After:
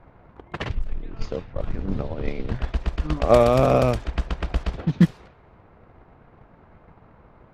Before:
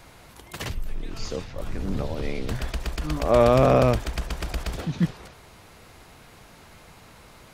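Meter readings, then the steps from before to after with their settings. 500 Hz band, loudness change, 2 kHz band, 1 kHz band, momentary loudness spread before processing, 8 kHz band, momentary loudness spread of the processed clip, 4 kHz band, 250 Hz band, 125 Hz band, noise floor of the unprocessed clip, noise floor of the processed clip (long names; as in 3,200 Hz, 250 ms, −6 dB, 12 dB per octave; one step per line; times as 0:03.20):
+1.0 dB, +1.5 dB, −0.5 dB, +0.5 dB, 18 LU, can't be measured, 16 LU, −2.0 dB, +2.5 dB, +2.0 dB, −50 dBFS, −54 dBFS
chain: transient designer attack +10 dB, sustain −2 dB
low-pass that shuts in the quiet parts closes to 1,400 Hz, open at −12.5 dBFS
one half of a high-frequency compander decoder only
level −1 dB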